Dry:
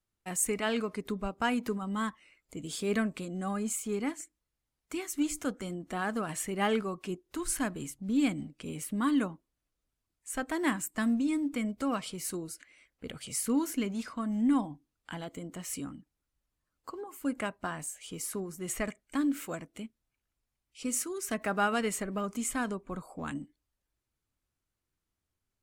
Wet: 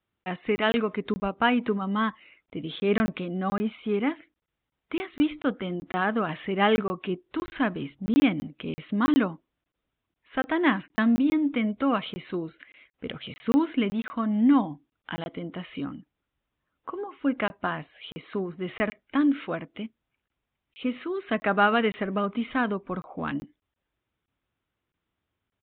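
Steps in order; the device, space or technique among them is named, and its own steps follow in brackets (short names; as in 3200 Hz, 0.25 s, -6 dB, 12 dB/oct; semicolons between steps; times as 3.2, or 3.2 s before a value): call with lost packets (HPF 120 Hz 6 dB/oct; downsampling 8000 Hz; packet loss packets of 20 ms random); gain +7.5 dB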